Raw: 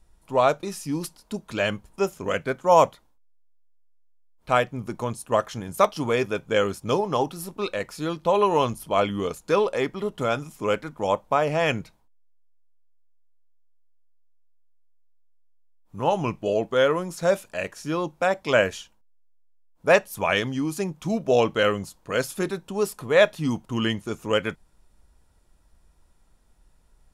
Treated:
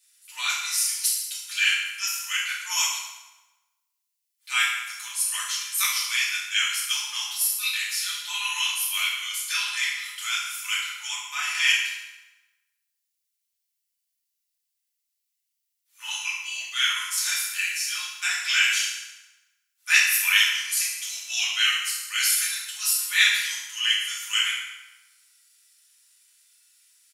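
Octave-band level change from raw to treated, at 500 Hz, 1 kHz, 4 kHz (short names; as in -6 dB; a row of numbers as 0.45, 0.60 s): under -40 dB, -11.5 dB, +11.5 dB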